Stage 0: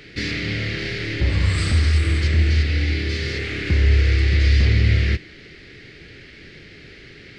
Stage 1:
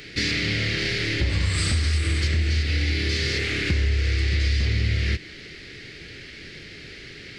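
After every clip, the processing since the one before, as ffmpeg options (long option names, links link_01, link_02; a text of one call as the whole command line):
ffmpeg -i in.wav -af "highshelf=frequency=3900:gain=10,acompressor=threshold=-19dB:ratio=6" out.wav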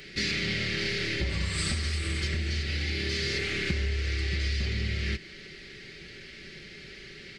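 ffmpeg -i in.wav -af "aecho=1:1:5.2:0.48,volume=-5.5dB" out.wav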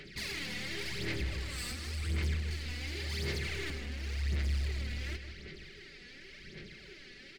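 ffmpeg -i in.wav -filter_complex "[0:a]asoftclip=type=hard:threshold=-30dB,aphaser=in_gain=1:out_gain=1:delay=4.1:decay=0.64:speed=0.91:type=sinusoidal,asplit=2[link_01][link_02];[link_02]adelay=158,lowpass=frequency=4100:poles=1,volume=-9dB,asplit=2[link_03][link_04];[link_04]adelay=158,lowpass=frequency=4100:poles=1,volume=0.51,asplit=2[link_05][link_06];[link_06]adelay=158,lowpass=frequency=4100:poles=1,volume=0.51,asplit=2[link_07][link_08];[link_08]adelay=158,lowpass=frequency=4100:poles=1,volume=0.51,asplit=2[link_09][link_10];[link_10]adelay=158,lowpass=frequency=4100:poles=1,volume=0.51,asplit=2[link_11][link_12];[link_12]adelay=158,lowpass=frequency=4100:poles=1,volume=0.51[link_13];[link_01][link_03][link_05][link_07][link_09][link_11][link_13]amix=inputs=7:normalize=0,volume=-8.5dB" out.wav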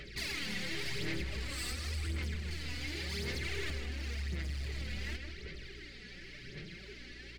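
ffmpeg -i in.wav -af "acompressor=threshold=-34dB:ratio=4,aeval=exprs='val(0)+0.002*(sin(2*PI*60*n/s)+sin(2*PI*2*60*n/s)/2+sin(2*PI*3*60*n/s)/3+sin(2*PI*4*60*n/s)/4+sin(2*PI*5*60*n/s)/5)':channel_layout=same,flanger=delay=1.5:depth=6:regen=44:speed=0.54:shape=triangular,volume=5dB" out.wav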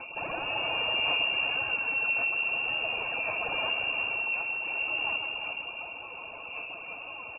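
ffmpeg -i in.wav -af "asuperstop=centerf=740:order=8:qfactor=2.5,aecho=1:1:350:0.422,lowpass=frequency=2400:width_type=q:width=0.5098,lowpass=frequency=2400:width_type=q:width=0.6013,lowpass=frequency=2400:width_type=q:width=0.9,lowpass=frequency=2400:width_type=q:width=2.563,afreqshift=-2800,volume=7dB" out.wav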